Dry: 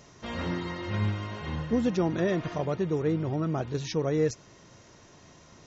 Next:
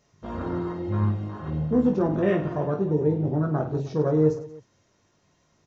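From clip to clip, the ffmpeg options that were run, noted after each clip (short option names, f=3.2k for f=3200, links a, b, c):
-filter_complex "[0:a]afwtdn=0.0178,asplit=2[a][b];[b]aecho=0:1:20|52|103.2|185.1|316.2:0.631|0.398|0.251|0.158|0.1[c];[a][c]amix=inputs=2:normalize=0,volume=2dB"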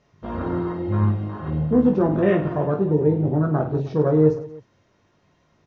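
-af "lowpass=3.6k,volume=4dB"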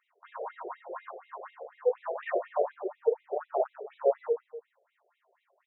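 -af "highshelf=f=3.1k:g=-9,afftfilt=real='re*between(b*sr/1024,520*pow(2900/520,0.5+0.5*sin(2*PI*4.1*pts/sr))/1.41,520*pow(2900/520,0.5+0.5*sin(2*PI*4.1*pts/sr))*1.41)':imag='im*between(b*sr/1024,520*pow(2900/520,0.5+0.5*sin(2*PI*4.1*pts/sr))/1.41,520*pow(2900/520,0.5+0.5*sin(2*PI*4.1*pts/sr))*1.41)':win_size=1024:overlap=0.75"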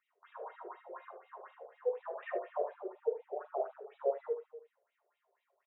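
-af "aecho=1:1:42|74:0.178|0.178,volume=-7.5dB"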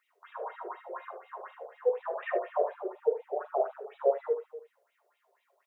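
-af "highpass=f=310:p=1,volume=8dB"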